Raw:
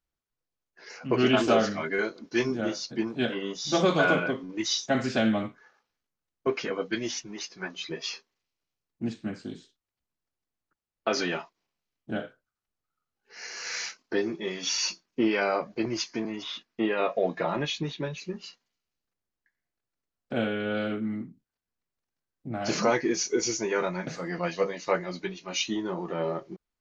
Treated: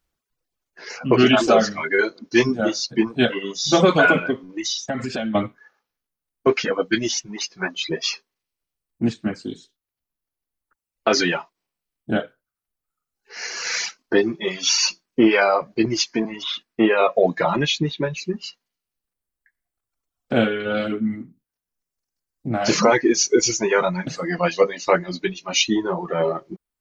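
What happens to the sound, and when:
4.38–5.35 s: compression 5:1, threshold -32 dBFS
whole clip: reverb removal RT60 1.8 s; loudness maximiser +14.5 dB; trim -4 dB

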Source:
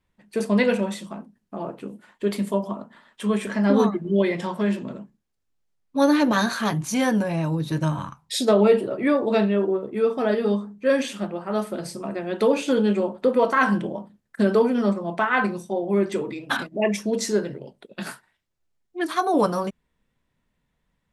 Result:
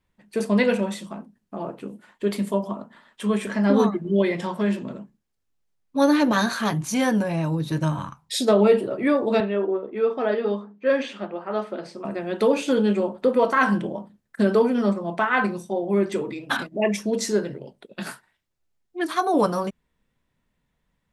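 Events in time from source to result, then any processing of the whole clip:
9.40–12.05 s: band-pass 280–3500 Hz

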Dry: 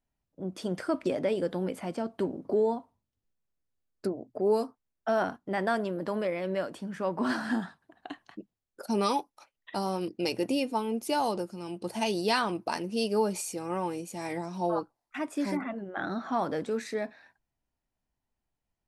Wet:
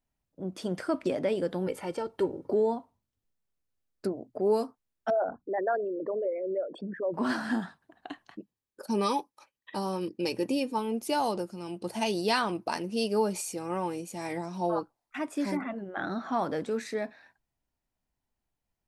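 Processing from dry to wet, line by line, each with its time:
1.67–2.51 s: comb 2.2 ms, depth 67%
5.10–7.14 s: resonances exaggerated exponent 3
8.39–10.78 s: comb of notches 700 Hz

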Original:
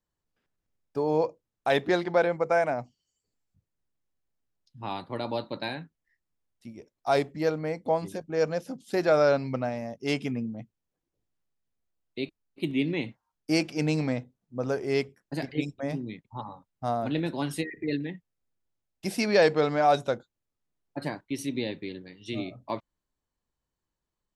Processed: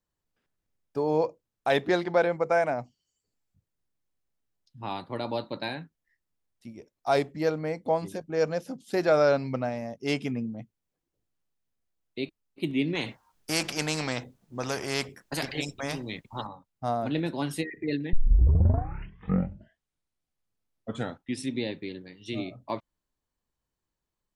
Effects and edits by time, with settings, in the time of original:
12.95–16.47 s: spectrum-flattening compressor 2:1
18.13 s: tape start 3.52 s

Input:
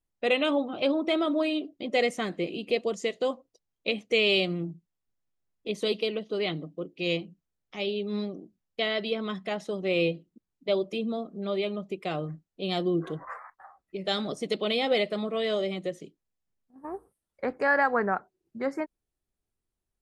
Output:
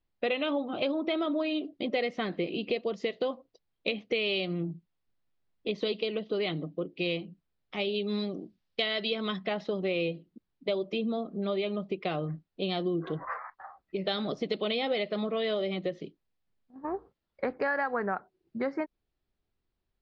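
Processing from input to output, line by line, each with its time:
7.94–9.37 s: treble shelf 3.1 kHz +11 dB
whole clip: steep low-pass 4.8 kHz 36 dB/octave; compression 4:1, threshold -32 dBFS; trim +4 dB

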